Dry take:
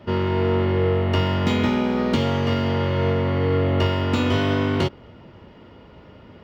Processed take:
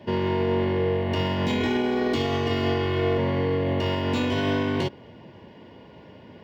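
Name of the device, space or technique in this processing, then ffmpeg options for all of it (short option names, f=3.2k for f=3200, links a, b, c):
PA system with an anti-feedback notch: -filter_complex "[0:a]highpass=110,asuperstop=centerf=1300:order=8:qfactor=5.3,alimiter=limit=-16.5dB:level=0:latency=1:release=28,asettb=1/sr,asplit=3[a][b][c];[a]atrim=end=1.604[d];[b]atrim=start=1.6:end=3.18,asetpts=PTS-STARTPTS,afade=t=in:d=0.004:c=qsin,afade=t=out:st=1.576:d=0.004:c=qsin,aecho=1:1:2.7:0.77,atrim=end_sample=69678[e];[c]atrim=start=3.176[f];[d][e]acrossfade=d=0.004:c1=hsin:c2=qsin[g];[g][f]acrossfade=d=0.004:c1=qsin:c2=hsin"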